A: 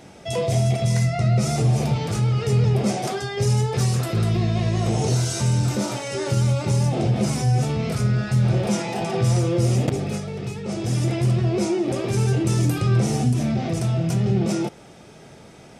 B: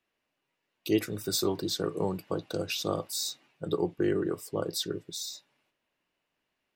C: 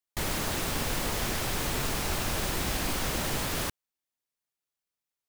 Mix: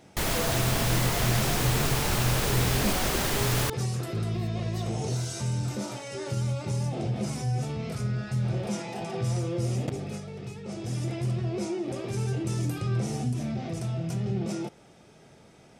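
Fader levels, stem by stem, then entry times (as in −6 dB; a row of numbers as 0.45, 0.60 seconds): −9.0, −15.5, +3.0 decibels; 0.00, 0.00, 0.00 seconds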